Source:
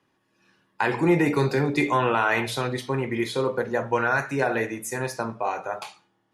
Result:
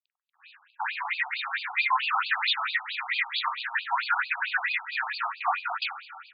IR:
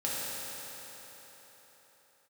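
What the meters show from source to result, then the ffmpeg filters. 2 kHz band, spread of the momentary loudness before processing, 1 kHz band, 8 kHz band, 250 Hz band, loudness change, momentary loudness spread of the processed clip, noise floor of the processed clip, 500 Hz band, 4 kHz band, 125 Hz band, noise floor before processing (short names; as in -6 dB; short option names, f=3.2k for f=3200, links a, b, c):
+1.0 dB, 9 LU, -2.0 dB, under -40 dB, under -40 dB, -3.0 dB, 7 LU, -77 dBFS, -25.0 dB, +6.5 dB, under -40 dB, -71 dBFS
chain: -filter_complex "[0:a]tiltshelf=f=790:g=-7.5,asplit=2[a][b];[b]acompressor=threshold=-31dB:ratio=6,volume=3dB[c];[a][c]amix=inputs=2:normalize=0,alimiter=limit=-13.5dB:level=0:latency=1:release=178,dynaudnorm=f=590:g=5:m=7dB,asoftclip=type=tanh:threshold=-20dB,flanger=delay=3.7:depth=8.9:regen=32:speed=0.46:shape=triangular,acrusher=bits=8:mix=0:aa=0.000001,asplit=2[d][e];[e]adelay=43,volume=-6.5dB[f];[d][f]amix=inputs=2:normalize=0,asplit=2[g][h];[1:a]atrim=start_sample=2205[i];[h][i]afir=irnorm=-1:irlink=0,volume=-17.5dB[j];[g][j]amix=inputs=2:normalize=0,afftfilt=real='re*between(b*sr/1024,930*pow(3500/930,0.5+0.5*sin(2*PI*4.5*pts/sr))/1.41,930*pow(3500/930,0.5+0.5*sin(2*PI*4.5*pts/sr))*1.41)':imag='im*between(b*sr/1024,930*pow(3500/930,0.5+0.5*sin(2*PI*4.5*pts/sr))/1.41,930*pow(3500/930,0.5+0.5*sin(2*PI*4.5*pts/sr))*1.41)':win_size=1024:overlap=0.75,volume=4dB"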